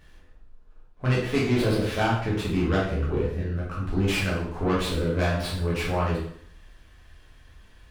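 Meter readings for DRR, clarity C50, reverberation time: -6.5 dB, 2.5 dB, 0.65 s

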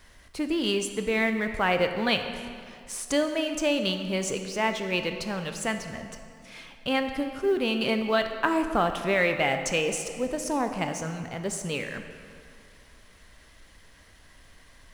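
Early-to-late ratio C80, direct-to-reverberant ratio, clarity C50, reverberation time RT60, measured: 8.5 dB, 6.5 dB, 7.5 dB, 2.4 s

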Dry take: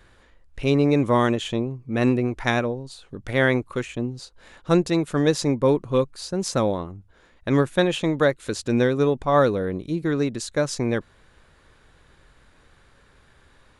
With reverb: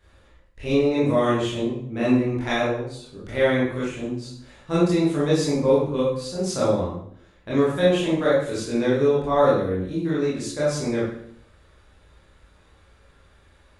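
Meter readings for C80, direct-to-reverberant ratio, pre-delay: 5.5 dB, -9.5 dB, 19 ms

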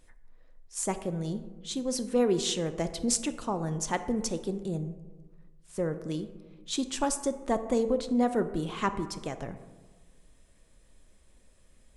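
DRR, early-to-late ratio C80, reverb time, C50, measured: 9.5 dB, 14.0 dB, 1.4 s, 12.0 dB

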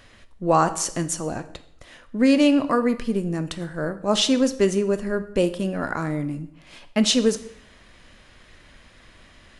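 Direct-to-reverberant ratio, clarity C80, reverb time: 10.0 dB, 17.5 dB, 0.70 s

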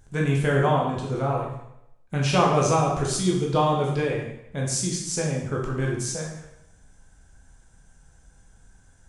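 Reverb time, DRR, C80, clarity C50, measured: 0.80 s, -2.0 dB, 6.0 dB, 3.0 dB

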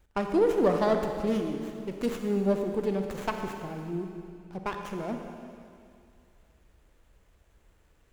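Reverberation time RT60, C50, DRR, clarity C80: 2.4 s, 4.5 dB, 4.0 dB, 5.5 dB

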